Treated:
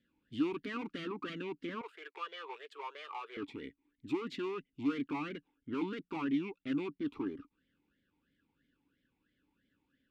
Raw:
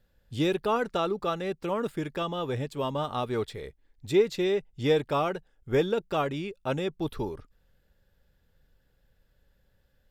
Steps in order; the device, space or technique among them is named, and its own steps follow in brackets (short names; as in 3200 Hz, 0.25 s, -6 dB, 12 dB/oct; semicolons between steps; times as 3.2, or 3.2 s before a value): talk box (tube stage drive 35 dB, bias 0.6; vowel sweep i-u 3 Hz); 1.81–3.37 elliptic high-pass 430 Hz, stop band 40 dB; gain +13 dB